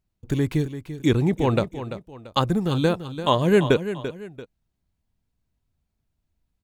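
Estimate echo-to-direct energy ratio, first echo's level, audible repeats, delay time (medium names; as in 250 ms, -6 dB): -11.0 dB, -11.5 dB, 2, 340 ms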